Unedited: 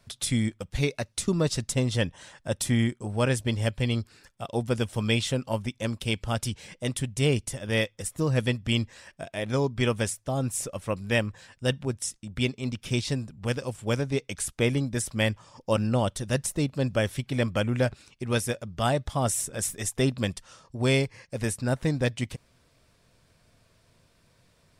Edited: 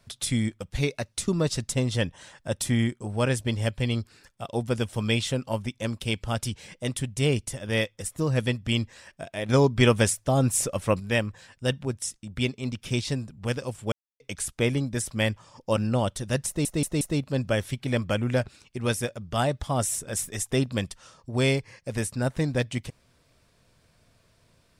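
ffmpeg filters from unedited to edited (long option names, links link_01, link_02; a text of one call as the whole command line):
ffmpeg -i in.wav -filter_complex "[0:a]asplit=8[link_01][link_02][link_03][link_04][link_05][link_06][link_07][link_08];[link_01]atrim=end=9.492[link_09];[link_02]atrim=start=9.488:end=11.002,asetpts=PTS-STARTPTS,volume=6dB[link_10];[link_03]atrim=start=10.998:end=13.92,asetpts=PTS-STARTPTS,afade=type=out:start_time=2.918:duration=0.004:curve=hsin[link_11];[link_04]atrim=start=13.92:end=14.2,asetpts=PTS-STARTPTS,volume=0[link_12];[link_05]atrim=start=14.2:end=16.652,asetpts=PTS-STARTPTS,afade=type=in:duration=0.004:curve=hsin[link_13];[link_06]atrim=start=16.468:end=16.652[link_14];[link_07]atrim=start=16.468:end=16.652[link_15];[link_08]atrim=start=16.468[link_16];[link_09][link_10]acrossfade=duration=0.004:curve1=hsin:curve2=hsin[link_17];[link_11][link_12][link_13]concat=n=3:v=0:a=1[link_18];[link_17][link_18]acrossfade=duration=0.004:curve1=hsin:curve2=hsin[link_19];[link_19][link_14]acrossfade=duration=0.004:curve1=hsin:curve2=hsin[link_20];[link_20][link_15]acrossfade=duration=0.004:curve1=hsin:curve2=hsin[link_21];[link_21][link_16]acrossfade=duration=0.004:curve1=hsin:curve2=hsin" out.wav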